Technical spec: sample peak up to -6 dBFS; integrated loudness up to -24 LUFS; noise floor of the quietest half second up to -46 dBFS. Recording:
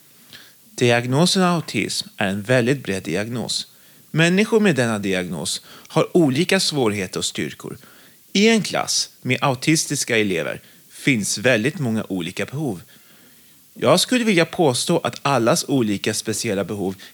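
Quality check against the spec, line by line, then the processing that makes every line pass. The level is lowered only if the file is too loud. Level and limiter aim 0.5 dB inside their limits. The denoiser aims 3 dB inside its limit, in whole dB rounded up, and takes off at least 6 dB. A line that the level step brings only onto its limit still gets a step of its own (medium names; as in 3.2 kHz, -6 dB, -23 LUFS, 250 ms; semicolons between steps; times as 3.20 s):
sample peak -5.0 dBFS: fail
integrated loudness -20.0 LUFS: fail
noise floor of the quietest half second -50 dBFS: pass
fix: trim -4.5 dB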